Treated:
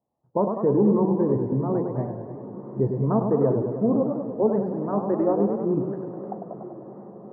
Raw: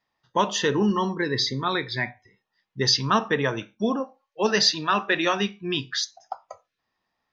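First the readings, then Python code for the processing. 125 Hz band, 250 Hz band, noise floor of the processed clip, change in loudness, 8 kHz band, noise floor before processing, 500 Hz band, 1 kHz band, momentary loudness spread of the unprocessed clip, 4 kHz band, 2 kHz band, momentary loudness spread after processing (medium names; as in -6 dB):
+5.5 dB, +5.0 dB, -44 dBFS, 0.0 dB, under -40 dB, -82 dBFS, +4.5 dB, -5.0 dB, 11 LU, under -40 dB, under -25 dB, 16 LU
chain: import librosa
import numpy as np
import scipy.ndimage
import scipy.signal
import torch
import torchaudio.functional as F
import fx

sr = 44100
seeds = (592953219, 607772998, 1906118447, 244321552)

p1 = scipy.signal.sosfilt(scipy.signal.cheby2(4, 70, 3200.0, 'lowpass', fs=sr, output='sos'), x)
p2 = fx.level_steps(p1, sr, step_db=15)
p3 = p1 + (p2 * 10.0 ** (-0.5 / 20.0))
p4 = scipy.signal.sosfilt(scipy.signal.butter(2, 62.0, 'highpass', fs=sr, output='sos'), p3)
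p5 = fx.echo_diffused(p4, sr, ms=908, feedback_pct=58, wet_db=-16)
y = fx.echo_warbled(p5, sr, ms=100, feedback_pct=67, rate_hz=2.8, cents=150, wet_db=-6.0)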